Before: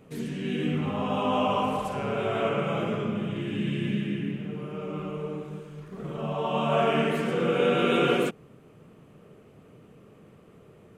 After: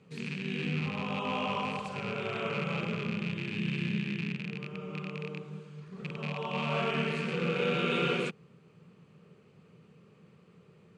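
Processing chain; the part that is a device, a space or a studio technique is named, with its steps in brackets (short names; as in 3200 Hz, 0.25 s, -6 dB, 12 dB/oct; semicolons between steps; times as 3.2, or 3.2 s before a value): car door speaker with a rattle (rattling part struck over -33 dBFS, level -24 dBFS; speaker cabinet 97–8400 Hz, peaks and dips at 170 Hz +7 dB, 290 Hz -9 dB, 660 Hz -8 dB, 2500 Hz +4 dB, 4400 Hz +8 dB); gain -6 dB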